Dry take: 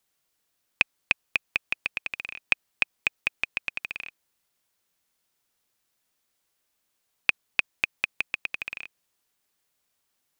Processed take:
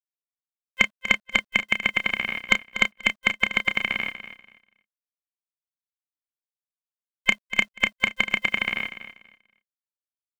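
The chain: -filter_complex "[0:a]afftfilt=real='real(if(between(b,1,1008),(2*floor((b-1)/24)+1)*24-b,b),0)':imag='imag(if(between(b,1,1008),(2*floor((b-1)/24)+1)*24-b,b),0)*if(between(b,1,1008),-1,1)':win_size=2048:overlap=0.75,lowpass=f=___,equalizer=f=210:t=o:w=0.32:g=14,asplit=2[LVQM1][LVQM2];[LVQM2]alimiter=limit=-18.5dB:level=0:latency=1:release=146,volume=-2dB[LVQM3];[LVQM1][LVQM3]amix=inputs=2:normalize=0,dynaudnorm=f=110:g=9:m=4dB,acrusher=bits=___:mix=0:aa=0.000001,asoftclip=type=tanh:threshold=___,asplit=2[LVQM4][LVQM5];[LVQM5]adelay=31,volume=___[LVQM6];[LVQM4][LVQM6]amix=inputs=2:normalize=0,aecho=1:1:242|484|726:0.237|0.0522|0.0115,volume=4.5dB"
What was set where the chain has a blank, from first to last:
2100, 9, -8.5dB, -9.5dB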